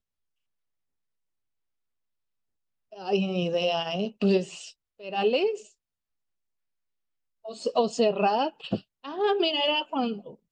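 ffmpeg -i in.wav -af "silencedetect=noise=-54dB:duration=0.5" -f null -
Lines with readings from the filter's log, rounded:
silence_start: 0.00
silence_end: 2.92 | silence_duration: 2.92
silence_start: 5.72
silence_end: 7.44 | silence_duration: 1.72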